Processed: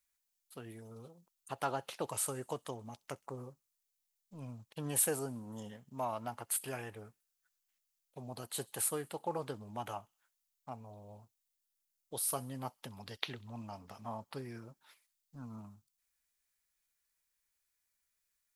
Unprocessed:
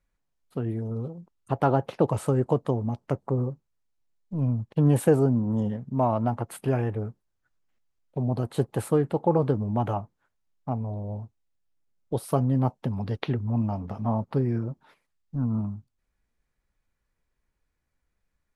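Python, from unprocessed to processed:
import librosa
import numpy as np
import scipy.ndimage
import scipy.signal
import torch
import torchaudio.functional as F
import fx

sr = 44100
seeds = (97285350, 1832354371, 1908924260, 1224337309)

y = scipy.signal.lfilter([1.0, -0.97], [1.0], x)
y = fx.echo_wet_highpass(y, sr, ms=65, feedback_pct=54, hz=3000.0, wet_db=-21.5)
y = F.gain(torch.from_numpy(y), 7.0).numpy()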